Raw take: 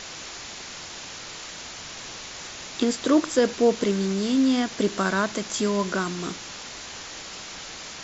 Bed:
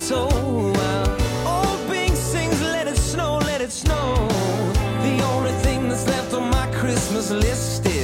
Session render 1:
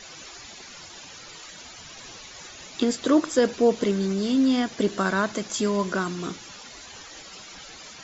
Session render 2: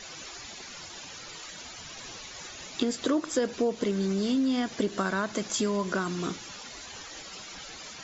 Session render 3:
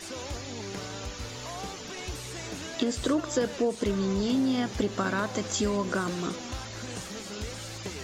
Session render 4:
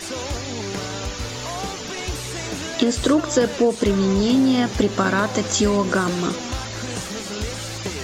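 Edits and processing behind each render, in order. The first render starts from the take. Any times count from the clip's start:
denoiser 12 dB, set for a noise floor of -39 dBFS
compressor 4:1, threshold -24 dBFS, peak gain reduction 9 dB
add bed -18.5 dB
gain +9 dB

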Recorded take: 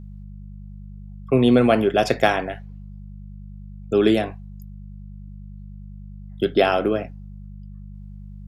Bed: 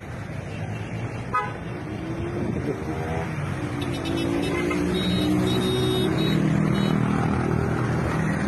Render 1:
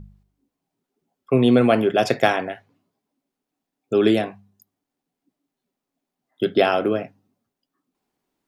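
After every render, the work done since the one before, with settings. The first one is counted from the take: de-hum 50 Hz, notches 4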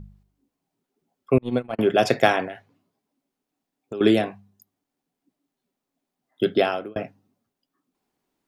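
1.38–1.79 gate -13 dBFS, range -42 dB; 2.45–4.01 compressor, threshold -29 dBFS; 6.48–6.96 fade out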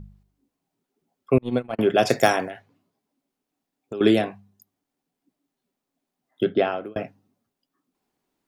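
2.09–2.51 resonant high shelf 4700 Hz +10.5 dB, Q 1.5; 6.43–6.84 air absorption 290 m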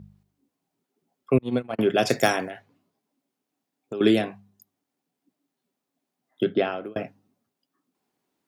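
HPF 96 Hz; dynamic EQ 780 Hz, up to -4 dB, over -28 dBFS, Q 0.77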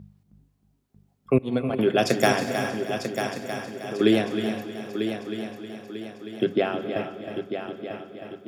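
multi-head echo 0.315 s, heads first and third, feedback 60%, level -9 dB; non-linear reverb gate 0.43 s rising, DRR 10 dB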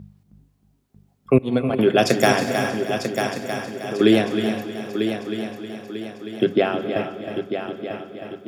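gain +4.5 dB; limiter -3 dBFS, peak gain reduction 2.5 dB

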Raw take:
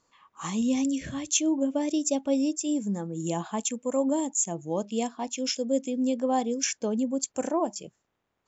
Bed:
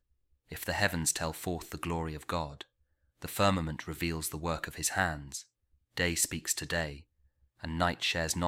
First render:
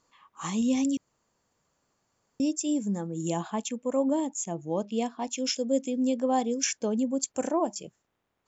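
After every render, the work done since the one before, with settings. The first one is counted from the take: 0.97–2.4 room tone; 3.5–5.22 air absorption 88 m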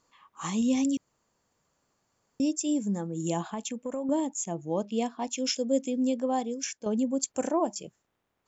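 3.5–4.09 compressor, threshold -29 dBFS; 5.98–6.86 fade out, to -9.5 dB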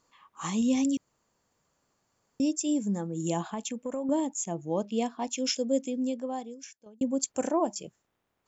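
5.61–7.01 fade out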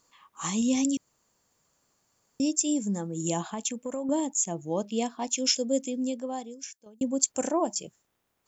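high shelf 4600 Hz +9.5 dB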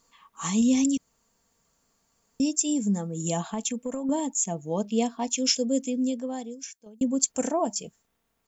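low shelf 110 Hz +8.5 dB; comb 4.4 ms, depth 45%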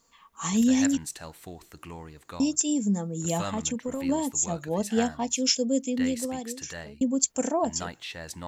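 add bed -7.5 dB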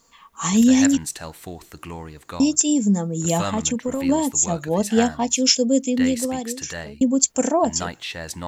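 gain +7 dB; limiter -2 dBFS, peak gain reduction 1 dB

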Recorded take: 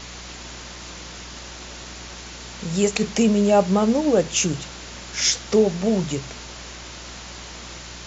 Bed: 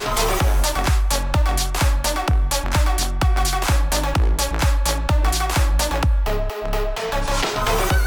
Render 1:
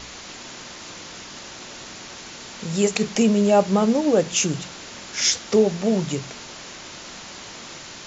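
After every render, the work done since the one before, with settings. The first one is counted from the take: de-hum 60 Hz, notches 3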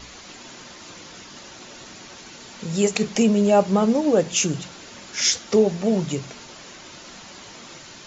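denoiser 6 dB, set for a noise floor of -39 dBFS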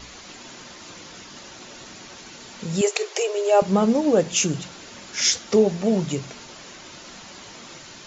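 2.81–3.62 brick-wall FIR high-pass 330 Hz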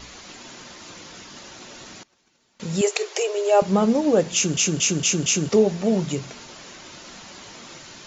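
2.03–2.6 gate -39 dBFS, range -24 dB; 4.34 stutter in place 0.23 s, 5 plays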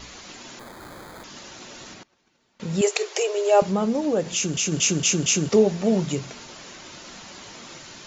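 0.59–1.24 sample-rate reducer 2800 Hz; 1.94–2.82 LPF 3400 Hz 6 dB/oct; 3.64–4.72 compressor 1.5:1, threshold -26 dBFS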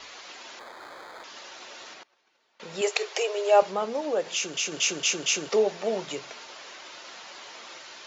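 three-band isolator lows -23 dB, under 410 Hz, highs -16 dB, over 6000 Hz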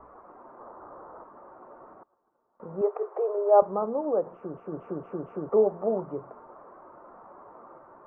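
elliptic low-pass 1200 Hz, stop band 70 dB; low shelf 170 Hz +10 dB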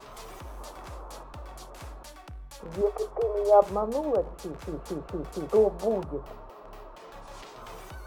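add bed -25.5 dB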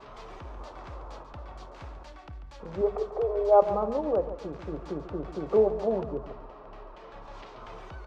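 air absorption 170 m; feedback echo 0.141 s, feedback 41%, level -12 dB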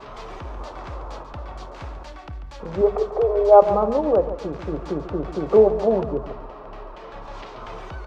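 gain +8 dB; limiter -1 dBFS, peak gain reduction 1.5 dB

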